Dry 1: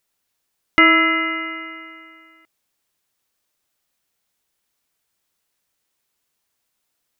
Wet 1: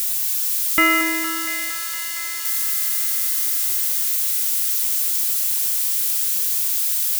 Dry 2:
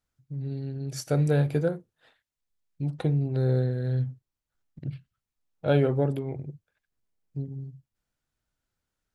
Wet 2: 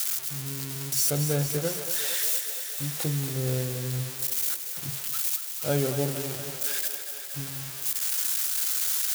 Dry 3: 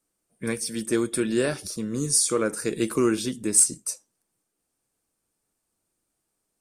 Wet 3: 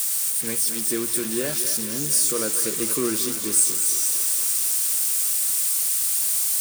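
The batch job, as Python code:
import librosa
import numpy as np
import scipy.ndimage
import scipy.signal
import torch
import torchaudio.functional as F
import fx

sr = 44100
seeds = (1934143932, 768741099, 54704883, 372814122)

y = x + 0.5 * 10.0 ** (-14.5 / 20.0) * np.diff(np.sign(x), prepend=np.sign(x[:1]))
y = fx.hum_notches(y, sr, base_hz=60, count=3)
y = fx.echo_thinned(y, sr, ms=231, feedback_pct=84, hz=380.0, wet_db=-9.0)
y = y * 10.0 ** (-4.0 / 20.0)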